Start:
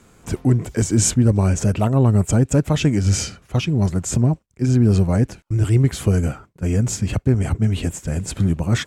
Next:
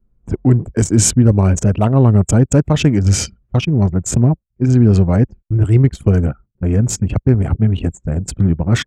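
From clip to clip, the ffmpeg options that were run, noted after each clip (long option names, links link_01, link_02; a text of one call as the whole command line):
ffmpeg -i in.wav -af "anlmdn=251,volume=4.5dB" out.wav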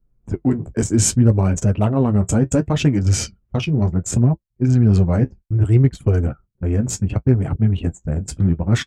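ffmpeg -i in.wav -af "flanger=delay=6.3:depth=8:regen=-39:speed=0.67:shape=triangular" out.wav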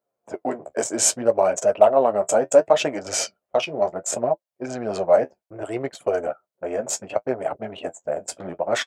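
ffmpeg -i in.wav -af "highpass=frequency=620:width_type=q:width=4.9" out.wav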